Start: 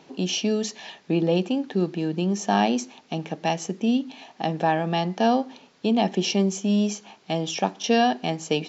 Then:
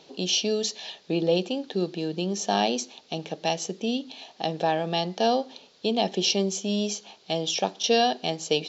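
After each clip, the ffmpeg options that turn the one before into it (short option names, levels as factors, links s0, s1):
-af "equalizer=f=125:t=o:w=1:g=-4,equalizer=f=250:t=o:w=1:g=-6,equalizer=f=500:t=o:w=1:g=4,equalizer=f=1000:t=o:w=1:g=-4,equalizer=f=2000:t=o:w=1:g=-5,equalizer=f=4000:t=o:w=1:g=9,volume=0.891"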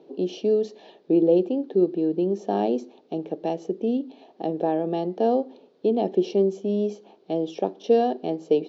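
-af "bandpass=f=350:t=q:w=2:csg=0,volume=2.66"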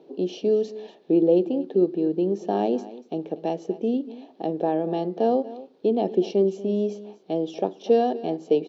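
-af "aecho=1:1:239:0.141"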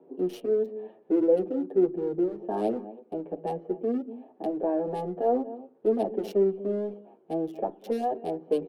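-filter_complex "[0:a]acrossover=split=250|520|1900[s0][s1][s2][s3];[s0]asoftclip=type=hard:threshold=0.0126[s4];[s3]acrusher=bits=5:mix=0:aa=0.5[s5];[s4][s1][s2][s5]amix=inputs=4:normalize=0,asplit=2[s6][s7];[s7]adelay=7.9,afreqshift=-0.59[s8];[s6][s8]amix=inputs=2:normalize=1"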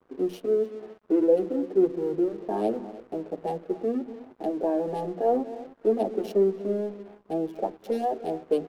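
-filter_complex "[0:a]bandreject=f=60:t=h:w=6,bandreject=f=120:t=h:w=6,bandreject=f=180:t=h:w=6,bandreject=f=240:t=h:w=6,asplit=2[s0][s1];[s1]adelay=303,lowpass=f=4100:p=1,volume=0.126,asplit=2[s2][s3];[s3]adelay=303,lowpass=f=4100:p=1,volume=0.4,asplit=2[s4][s5];[s5]adelay=303,lowpass=f=4100:p=1,volume=0.4[s6];[s0][s2][s4][s6]amix=inputs=4:normalize=0,aeval=exprs='sgn(val(0))*max(abs(val(0))-0.002,0)':c=same,volume=1.19"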